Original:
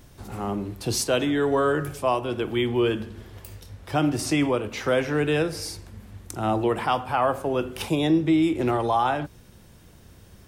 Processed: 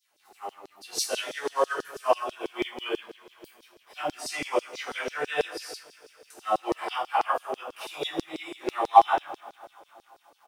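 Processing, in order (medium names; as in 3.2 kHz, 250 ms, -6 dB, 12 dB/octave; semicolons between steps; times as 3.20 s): reverse bouncing-ball echo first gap 20 ms, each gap 1.3×, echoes 5; two-slope reverb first 0.28 s, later 4.7 s, from -21 dB, DRR -6.5 dB; LFO high-pass saw down 6.1 Hz 390–5300 Hz; in parallel at -11 dB: word length cut 6-bit, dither none; on the sum: upward expansion 1.5:1, over -29 dBFS; trim -9.5 dB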